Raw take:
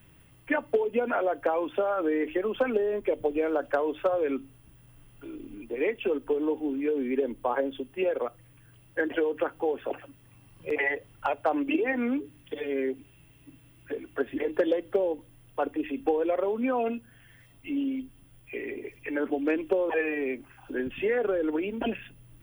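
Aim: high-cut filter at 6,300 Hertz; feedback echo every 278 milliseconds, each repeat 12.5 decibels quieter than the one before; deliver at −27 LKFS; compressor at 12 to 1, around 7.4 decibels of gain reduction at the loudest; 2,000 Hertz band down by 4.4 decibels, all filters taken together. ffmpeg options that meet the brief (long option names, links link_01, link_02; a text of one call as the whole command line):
ffmpeg -i in.wav -af "lowpass=6300,equalizer=frequency=2000:width_type=o:gain=-5.5,acompressor=threshold=-28dB:ratio=12,aecho=1:1:278|556|834:0.237|0.0569|0.0137,volume=7.5dB" out.wav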